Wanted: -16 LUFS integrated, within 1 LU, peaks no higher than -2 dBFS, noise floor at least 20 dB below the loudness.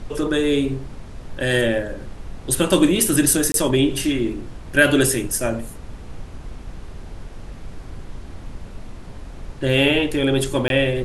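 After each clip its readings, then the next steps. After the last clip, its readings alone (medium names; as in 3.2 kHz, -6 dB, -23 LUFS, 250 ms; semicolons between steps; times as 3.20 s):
dropouts 2; longest dropout 22 ms; noise floor -38 dBFS; noise floor target -39 dBFS; loudness -19.0 LUFS; peak level -2.0 dBFS; loudness target -16.0 LUFS
-> interpolate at 3.52/10.68 s, 22 ms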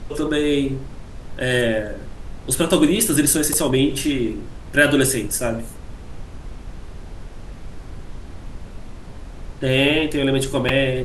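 dropouts 0; noise floor -37 dBFS; noise floor target -39 dBFS
-> noise print and reduce 6 dB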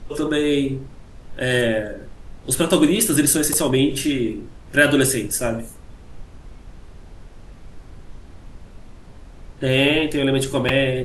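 noise floor -43 dBFS; loudness -19.0 LUFS; peak level -2.5 dBFS; loudness target -16.0 LUFS
-> trim +3 dB; peak limiter -2 dBFS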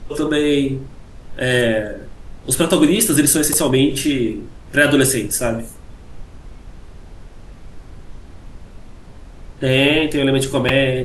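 loudness -16.5 LUFS; peak level -2.0 dBFS; noise floor -40 dBFS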